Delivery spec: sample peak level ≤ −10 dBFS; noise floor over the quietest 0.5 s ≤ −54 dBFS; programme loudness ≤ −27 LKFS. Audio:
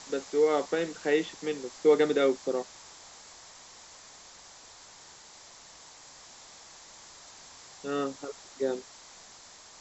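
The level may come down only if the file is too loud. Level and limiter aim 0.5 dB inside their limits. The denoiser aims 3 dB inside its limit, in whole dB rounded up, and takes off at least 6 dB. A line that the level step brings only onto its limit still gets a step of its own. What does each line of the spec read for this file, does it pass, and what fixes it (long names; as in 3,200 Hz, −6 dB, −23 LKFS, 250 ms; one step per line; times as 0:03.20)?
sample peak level −11.5 dBFS: in spec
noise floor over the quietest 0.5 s −52 dBFS: out of spec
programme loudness −29.0 LKFS: in spec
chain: broadband denoise 6 dB, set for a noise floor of −52 dBFS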